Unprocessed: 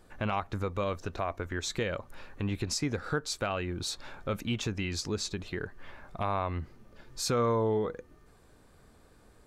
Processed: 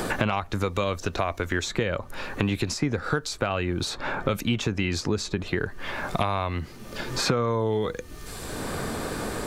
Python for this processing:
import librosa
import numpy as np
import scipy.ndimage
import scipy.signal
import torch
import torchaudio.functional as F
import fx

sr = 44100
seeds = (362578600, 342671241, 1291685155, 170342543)

y = fx.band_squash(x, sr, depth_pct=100)
y = y * 10.0 ** (5.5 / 20.0)